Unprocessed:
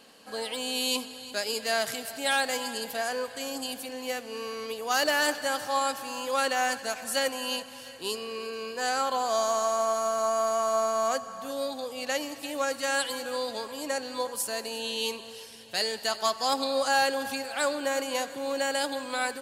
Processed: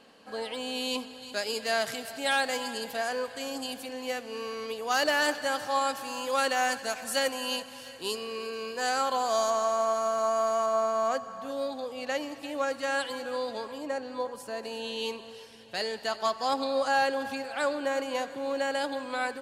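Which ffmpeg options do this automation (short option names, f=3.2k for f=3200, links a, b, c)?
-af "asetnsamples=n=441:p=0,asendcmd='1.22 lowpass f 5500;5.95 lowpass f 11000;9.5 lowpass f 4100;10.66 lowpass f 2400;13.78 lowpass f 1200;14.63 lowpass f 2400',lowpass=f=2.6k:p=1"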